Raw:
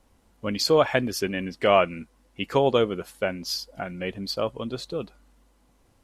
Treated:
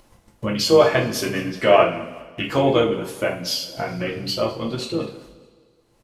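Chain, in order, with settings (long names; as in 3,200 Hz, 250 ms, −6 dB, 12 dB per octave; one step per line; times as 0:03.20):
noise gate −55 dBFS, range −41 dB
mains-hum notches 50/100/150/200/250/300/350/400/450 Hz
upward compression, threshold −24 dBFS
pitch-shifted copies added −7 semitones −10 dB
repeating echo 205 ms, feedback 39%, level −20 dB
coupled-rooms reverb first 0.36 s, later 2.1 s, from −22 dB, DRR −1.5 dB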